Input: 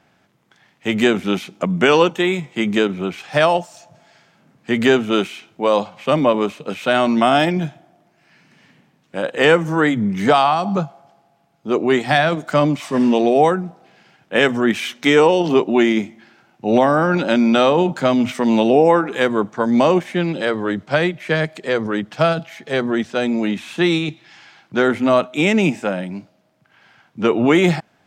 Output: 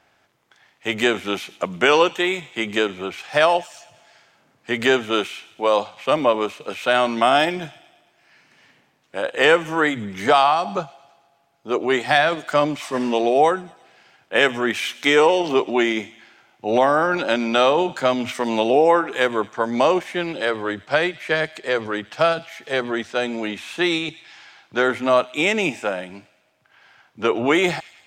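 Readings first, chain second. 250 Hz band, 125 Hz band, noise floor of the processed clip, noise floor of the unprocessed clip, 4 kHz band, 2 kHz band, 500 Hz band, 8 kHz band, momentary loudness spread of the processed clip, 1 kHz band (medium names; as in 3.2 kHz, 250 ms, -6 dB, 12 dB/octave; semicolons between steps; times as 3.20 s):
-7.5 dB, -11.0 dB, -62 dBFS, -60 dBFS, 0.0 dB, 0.0 dB, -2.5 dB, 0.0 dB, 11 LU, -1.0 dB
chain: peaking EQ 180 Hz -13 dB 1.4 oct; feedback echo behind a high-pass 111 ms, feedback 56%, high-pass 2.4 kHz, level -17 dB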